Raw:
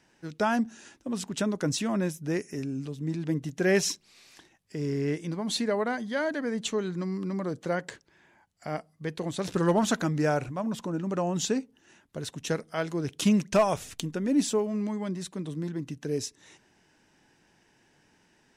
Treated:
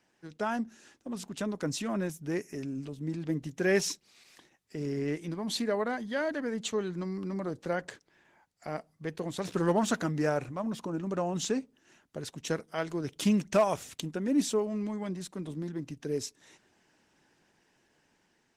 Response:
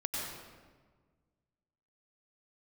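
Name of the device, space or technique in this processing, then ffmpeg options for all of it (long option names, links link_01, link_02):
video call: -af "highpass=frequency=130:poles=1,dynaudnorm=framelen=680:gausssize=5:maxgain=3.5dB,volume=-5dB" -ar 48000 -c:a libopus -b:a 16k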